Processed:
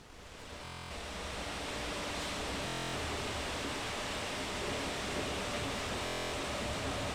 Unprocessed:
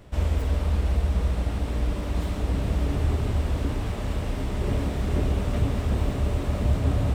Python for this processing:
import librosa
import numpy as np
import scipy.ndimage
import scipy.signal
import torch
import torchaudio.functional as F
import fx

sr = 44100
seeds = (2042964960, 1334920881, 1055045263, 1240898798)

p1 = fx.fade_in_head(x, sr, length_s=1.91)
p2 = fx.highpass(p1, sr, hz=1200.0, slope=6)
p3 = fx.high_shelf(p2, sr, hz=4000.0, db=9.5)
p4 = 10.0 ** (-39.5 / 20.0) * (np.abs((p3 / 10.0 ** (-39.5 / 20.0) + 3.0) % 4.0 - 2.0) - 1.0)
p5 = p3 + (p4 * librosa.db_to_amplitude(-5.5))
p6 = fx.dmg_noise_colour(p5, sr, seeds[0], colour='pink', level_db=-51.0)
p7 = np.sign(p6) * np.maximum(np.abs(p6) - 10.0 ** (-60.0 / 20.0), 0.0)
p8 = fx.air_absorb(p7, sr, metres=63.0)
p9 = fx.buffer_glitch(p8, sr, at_s=(0.63, 2.66, 6.04), block=1024, repeats=11)
y = p9 * librosa.db_to_amplitude(1.5)